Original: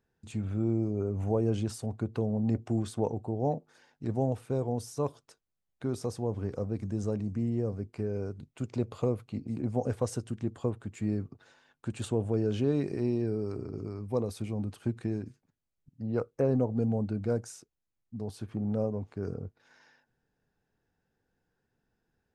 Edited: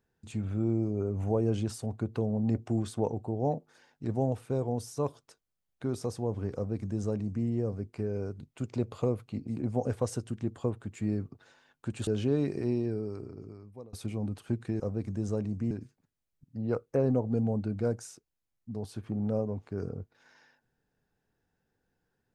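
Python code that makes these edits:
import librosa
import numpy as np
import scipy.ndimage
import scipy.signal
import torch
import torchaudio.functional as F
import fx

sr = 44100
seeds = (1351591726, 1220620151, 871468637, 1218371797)

y = fx.edit(x, sr, fx.duplicate(start_s=6.55, length_s=0.91, to_s=15.16),
    fx.cut(start_s=12.07, length_s=0.36),
    fx.fade_out_to(start_s=13.05, length_s=1.24, floor_db=-24.0), tone=tone)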